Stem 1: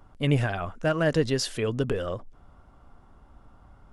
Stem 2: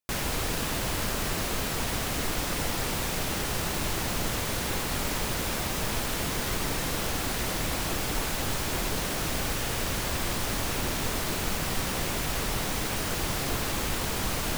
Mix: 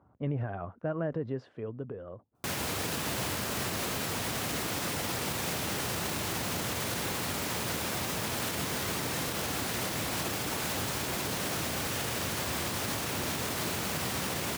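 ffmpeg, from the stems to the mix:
-filter_complex "[0:a]lowpass=1100,volume=0.562,afade=t=out:st=1.14:d=0.63:silence=0.446684[s0];[1:a]adelay=2350,volume=1.26[s1];[s0][s1]amix=inputs=2:normalize=0,highpass=f=82:w=0.5412,highpass=f=82:w=1.3066,alimiter=limit=0.0668:level=0:latency=1:release=72"

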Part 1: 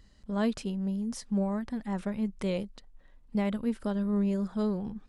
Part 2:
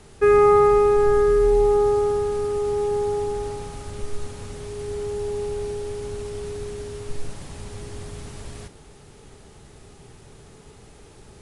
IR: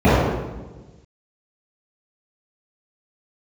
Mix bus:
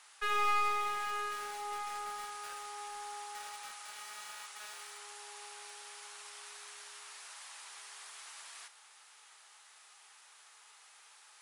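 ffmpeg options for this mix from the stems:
-filter_complex "[0:a]alimiter=level_in=1.26:limit=0.0631:level=0:latency=1,volume=0.794,acrusher=samples=42:mix=1:aa=0.000001,volume=0.398[s0];[1:a]volume=0.668[s1];[s0][s1]amix=inputs=2:normalize=0,highpass=f=1000:w=0.5412,highpass=f=1000:w=1.3066,aeval=exprs='clip(val(0),-1,0.01)':c=same"

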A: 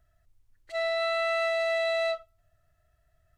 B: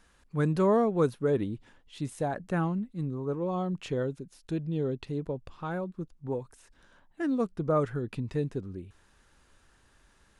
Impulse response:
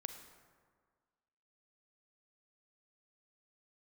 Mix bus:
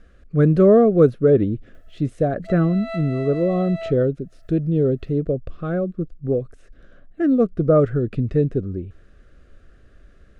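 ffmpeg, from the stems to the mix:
-filter_complex "[0:a]acompressor=mode=upward:threshold=0.00794:ratio=2.5,adelay=1750,volume=0.531[s0];[1:a]aemphasis=mode=reproduction:type=bsi,volume=1.19,asplit=2[s1][s2];[s2]apad=whole_len=230378[s3];[s0][s3]sidechaincompress=threshold=0.0251:ratio=5:attack=9:release=173[s4];[s4][s1]amix=inputs=2:normalize=0,asuperstop=centerf=910:order=4:qfactor=1.8,equalizer=f=580:t=o:w=2.6:g=9.5"

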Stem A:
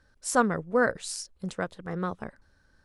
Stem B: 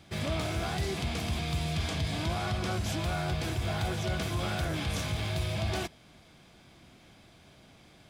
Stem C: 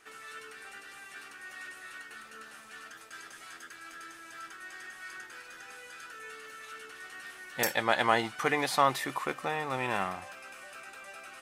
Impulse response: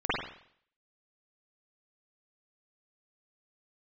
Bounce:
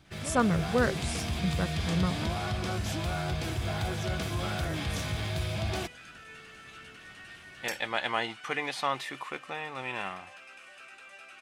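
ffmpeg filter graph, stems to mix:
-filter_complex "[0:a]equalizer=f=150:t=o:w=0.76:g=13,volume=0.631[s0];[1:a]dynaudnorm=f=390:g=3:m=1.78,volume=0.531[s1];[2:a]lowpass=9400,equalizer=f=2800:t=o:w=0.93:g=7.5,adelay=50,volume=0.501[s2];[s0][s1][s2]amix=inputs=3:normalize=0"

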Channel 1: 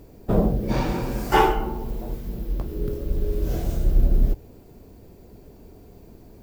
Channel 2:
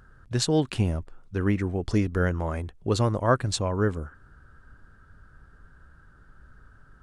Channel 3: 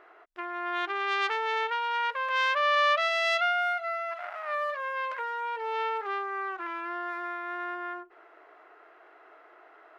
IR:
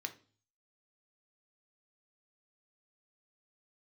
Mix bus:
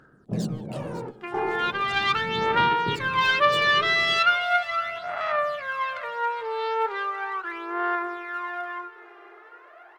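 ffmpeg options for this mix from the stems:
-filter_complex "[0:a]lowpass=1200,alimiter=limit=0.158:level=0:latency=1,highpass=f=130:w=0.5412,highpass=f=130:w=1.3066,volume=0.473[s0];[1:a]highpass=f=560:p=1,acompressor=threshold=0.0178:ratio=3,asoftclip=type=hard:threshold=0.0158,volume=0.596,asplit=3[s1][s2][s3];[s2]volume=0.224[s4];[2:a]adynamicequalizer=threshold=0.00631:dfrequency=3800:dqfactor=1.9:tfrequency=3800:tqfactor=1.9:attack=5:release=100:ratio=0.375:range=2.5:mode=boostabove:tftype=bell,adelay=850,volume=1.19,asplit=2[s5][s6];[s6]volume=0.15[s7];[s3]apad=whole_len=283198[s8];[s0][s8]sidechaingate=range=0.251:threshold=0.00126:ratio=16:detection=peak[s9];[s4][s7]amix=inputs=2:normalize=0,aecho=0:1:549|1098|1647|2196|2745|3294|3843:1|0.51|0.26|0.133|0.0677|0.0345|0.0176[s10];[s9][s1][s5][s10]amix=inputs=4:normalize=0,equalizer=f=150:t=o:w=0.43:g=6.5,aphaser=in_gain=1:out_gain=1:delay=2.5:decay=0.62:speed=0.38:type=sinusoidal"

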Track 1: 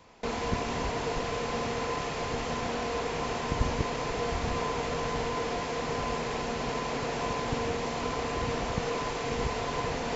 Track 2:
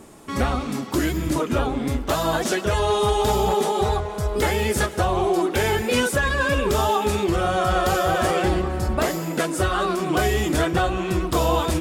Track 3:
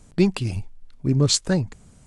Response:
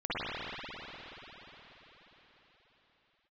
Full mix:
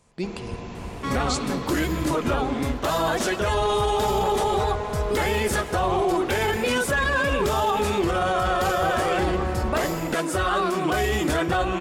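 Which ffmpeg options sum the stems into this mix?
-filter_complex "[0:a]lowshelf=f=200:g=10.5,volume=0.251,asplit=2[s0][s1];[s1]volume=0.237[s2];[1:a]equalizer=f=1300:w=0.34:g=4.5,adelay=750,volume=0.75[s3];[2:a]highpass=f=300:p=1,volume=0.355,asplit=2[s4][s5];[s5]volume=0.2[s6];[3:a]atrim=start_sample=2205[s7];[s2][s6]amix=inputs=2:normalize=0[s8];[s8][s7]afir=irnorm=-1:irlink=0[s9];[s0][s3][s4][s9]amix=inputs=4:normalize=0,alimiter=limit=0.188:level=0:latency=1:release=17"

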